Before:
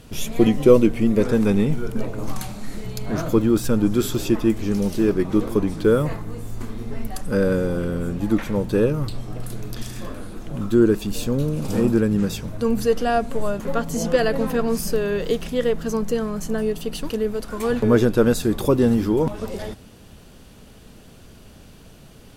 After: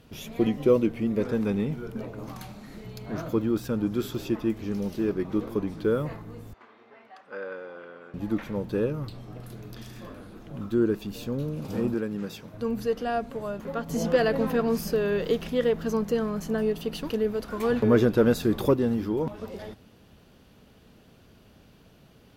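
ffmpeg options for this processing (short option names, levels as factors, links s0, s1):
-filter_complex "[0:a]asettb=1/sr,asplit=3[s0][s1][s2];[s0]atrim=end=6.534[s3];[s1]atrim=start=6.53:end=8.14,asetpts=PTS-STARTPTS,afade=t=in:d=0.004:c=qsin,afade=t=out:st=1.606:d=0.004:c=qsin,highpass=740,lowpass=2600[s4];[s2]atrim=start=8.136[s5];[s3][s4]acrossfade=d=0.004:c1=hsin:c2=qsin[s6];[s6][s5]acrossfade=d=0.004:c1=qsin:c2=hsin,asettb=1/sr,asplit=3[s7][s8][s9];[s7]atrim=end=11.944[s10];[s8]atrim=start=11.94:end=12.54,asetpts=PTS-STARTPTS,afade=t=in:d=0.004:c=qsin,afade=t=out:st=0.596:d=0.004:c=qsin,highpass=f=270:p=1[s11];[s9]atrim=start=12.536[s12];[s10][s11]acrossfade=d=0.004:c1=hsin:c2=qsin[s13];[s13][s12]acrossfade=d=0.004:c1=qsin:c2=hsin,asettb=1/sr,asplit=3[s14][s15][s16];[s14]atrim=end=13.894[s17];[s15]atrim=start=13.89:end=18.74,asetpts=PTS-STARTPTS,afade=t=in:d=0.004:c=qsin,afade=t=out:st=4.846:d=0.004:c=qsin,acontrast=30[s18];[s16]atrim=start=18.736[s19];[s17][s18]acrossfade=d=0.004:c1=hsin:c2=qsin[s20];[s20][s19]acrossfade=d=0.004:c1=qsin:c2=hsin,highpass=f=69:p=1,equalizer=f=8600:t=o:w=1:g=-10,volume=0.422"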